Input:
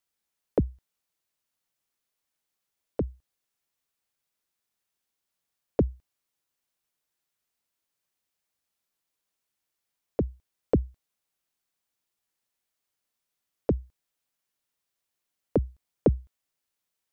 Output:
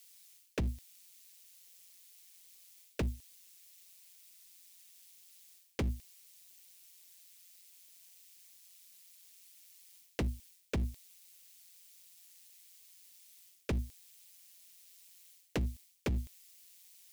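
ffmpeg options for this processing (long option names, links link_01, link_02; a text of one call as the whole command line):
ffmpeg -i in.wav -af "areverse,acompressor=threshold=-32dB:ratio=12,areverse,asoftclip=type=hard:threshold=-37dB,aexciter=amount=4.2:drive=6.7:freq=2000,tremolo=f=180:d=0.571,volume=9.5dB" out.wav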